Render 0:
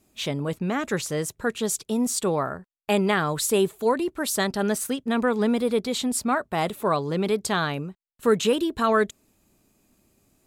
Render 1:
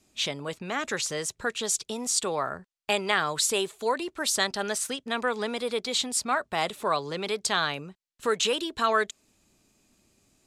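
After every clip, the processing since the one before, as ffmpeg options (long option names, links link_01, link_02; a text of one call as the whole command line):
ffmpeg -i in.wav -filter_complex "[0:a]lowpass=6800,highshelf=frequency=2500:gain=10,acrossover=split=430|1700|2400[link_01][link_02][link_03][link_04];[link_01]acompressor=threshold=-36dB:ratio=5[link_05];[link_05][link_02][link_03][link_04]amix=inputs=4:normalize=0,volume=-3dB" out.wav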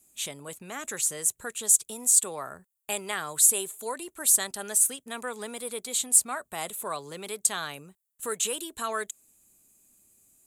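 ffmpeg -i in.wav -af "aexciter=amount=8.9:drive=6.6:freq=7300,volume=-7.5dB" out.wav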